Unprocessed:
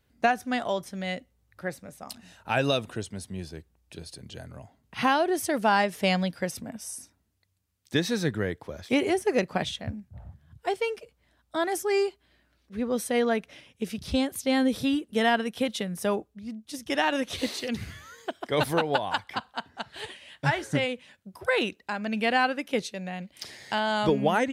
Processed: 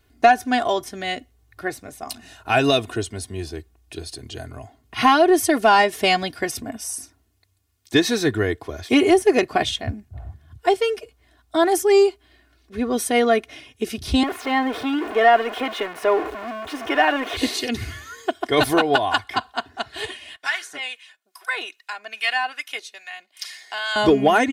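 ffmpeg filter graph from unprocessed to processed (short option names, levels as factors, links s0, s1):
-filter_complex "[0:a]asettb=1/sr,asplit=3[s0][s1][s2];[s0]atrim=end=14.234[s3];[s1]atrim=start=14.23:end=17.37,asetpts=PTS-STARTPTS,afade=t=in:d=0.004:c=qsin,afade=t=out:st=3.136:d=0.004:c=qsin,aeval=exprs='val(0)+0.5*0.0473*sgn(val(0))':c=same,acrossover=split=360 2500:gain=0.0891 1 0.0794[s4][s5][s6];[s4][s5][s6]amix=inputs=3:normalize=0[s7];[s2]atrim=start=17.366[s8];[s3][s7]acrossfade=d=0.004:c1=hsin:c2=qsin[s9];[s9][s8]acrossfade=d=0.004:c1=qsin:c2=hsin,asettb=1/sr,asplit=3[s10][s11][s12];[s10]atrim=end=20.364[s13];[s11]atrim=start=20.36:end=23.96,asetpts=PTS-STARTPTS,afade=t=in:d=0.004:c=qsin,afade=t=out:st=3.596:d=0.004:c=qsin,highpass=1200,acrossover=split=940[s14][s15];[s14]aeval=exprs='val(0)*(1-0.7/2+0.7/2*cos(2*PI*2.4*n/s))':c=same[s16];[s15]aeval=exprs='val(0)*(1-0.7/2-0.7/2*cos(2*PI*2.4*n/s))':c=same[s17];[s16][s17]amix=inputs=2:normalize=0[s18];[s12]atrim=start=23.956[s19];[s13][s18]acrossfade=d=0.004:c1=hsin:c2=qsin[s20];[s20][s19]acrossfade=d=0.004:c1=qsin:c2=hsin,aecho=1:1:2.8:0.74,acontrast=69"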